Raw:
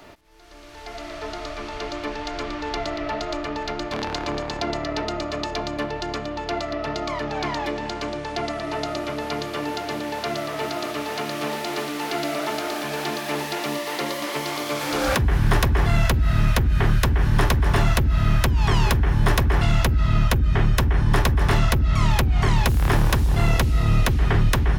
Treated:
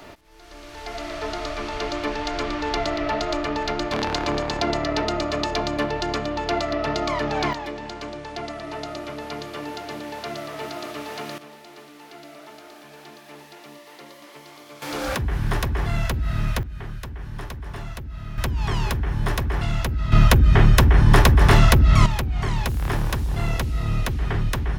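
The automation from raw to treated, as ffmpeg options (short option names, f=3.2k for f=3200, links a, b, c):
-af "asetnsamples=n=441:p=0,asendcmd='7.53 volume volume -5dB;11.38 volume volume -17dB;14.82 volume volume -5dB;16.63 volume volume -15dB;18.38 volume volume -5dB;20.12 volume volume 5dB;22.06 volume volume -5dB',volume=3dB"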